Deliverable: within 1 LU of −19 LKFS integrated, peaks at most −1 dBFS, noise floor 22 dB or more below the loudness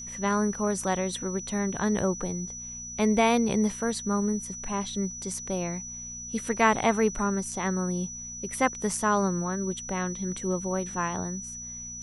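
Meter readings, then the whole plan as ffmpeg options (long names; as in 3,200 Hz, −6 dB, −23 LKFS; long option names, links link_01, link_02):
mains hum 60 Hz; hum harmonics up to 240 Hz; level of the hum −46 dBFS; interfering tone 5,900 Hz; level of the tone −37 dBFS; integrated loudness −28.5 LKFS; sample peak −8.0 dBFS; target loudness −19.0 LKFS
→ -af "bandreject=frequency=60:width_type=h:width=4,bandreject=frequency=120:width_type=h:width=4,bandreject=frequency=180:width_type=h:width=4,bandreject=frequency=240:width_type=h:width=4"
-af "bandreject=frequency=5900:width=30"
-af "volume=9.5dB,alimiter=limit=-1dB:level=0:latency=1"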